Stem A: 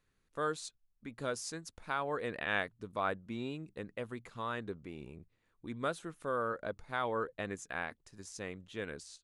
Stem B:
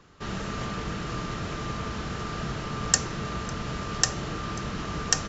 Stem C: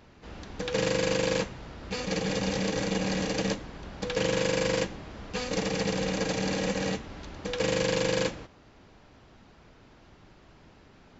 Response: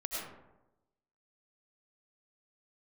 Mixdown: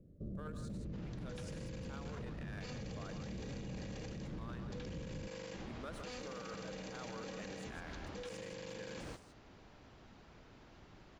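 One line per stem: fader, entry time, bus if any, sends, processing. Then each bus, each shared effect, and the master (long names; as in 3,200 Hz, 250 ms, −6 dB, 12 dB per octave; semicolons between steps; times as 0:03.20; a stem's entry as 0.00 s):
−16.0 dB, 0.00 s, send −14.5 dB, echo send −7.5 dB, leveller curve on the samples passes 2
−0.5 dB, 0.00 s, no send, no echo send, elliptic low-pass filter 560 Hz, stop band 40 dB; parametric band 430 Hz −8.5 dB 0.77 octaves
−8.0 dB, 0.70 s, no send, no echo send, compressor whose output falls as the input rises −33 dBFS, ratio −1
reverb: on, RT60 0.95 s, pre-delay 60 ms
echo: single-tap delay 162 ms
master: brickwall limiter −37.5 dBFS, peak gain reduction 15 dB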